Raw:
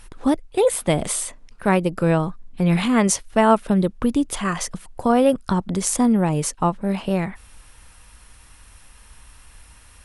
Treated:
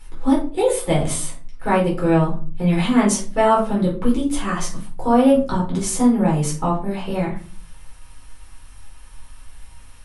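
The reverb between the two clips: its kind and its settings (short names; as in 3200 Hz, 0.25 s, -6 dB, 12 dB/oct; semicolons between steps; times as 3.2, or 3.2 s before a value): shoebox room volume 250 m³, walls furnished, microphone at 4.2 m; gain -8 dB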